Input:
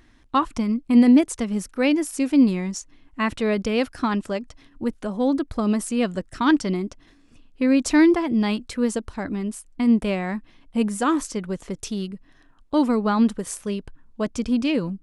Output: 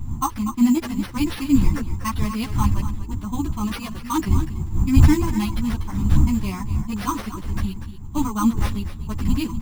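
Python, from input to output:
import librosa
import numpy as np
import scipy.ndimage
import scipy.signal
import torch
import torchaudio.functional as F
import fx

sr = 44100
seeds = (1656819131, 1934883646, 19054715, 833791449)

p1 = fx.spec_quant(x, sr, step_db=15)
p2 = fx.dmg_wind(p1, sr, seeds[0], corner_hz=96.0, level_db=-18.0)
p3 = fx.curve_eq(p2, sr, hz=(220.0, 310.0, 520.0, 1000.0, 1600.0, 2400.0, 5500.0), db=(0, 1, -21, 9, -6, 0, 6))
p4 = p3 + fx.echo_single(p3, sr, ms=378, db=-11.5, dry=0)
p5 = fx.stretch_vocoder(p4, sr, factor=0.64)
p6 = fx.sample_hold(p5, sr, seeds[1], rate_hz=7300.0, jitter_pct=0)
y = fx.ensemble(p6, sr)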